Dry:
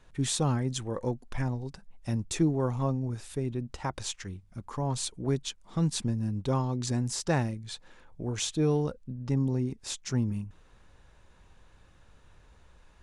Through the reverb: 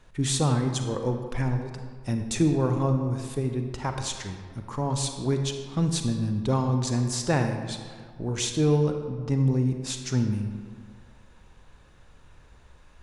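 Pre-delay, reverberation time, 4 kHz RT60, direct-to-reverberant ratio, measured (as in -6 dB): 36 ms, 1.8 s, 1.1 s, 5.0 dB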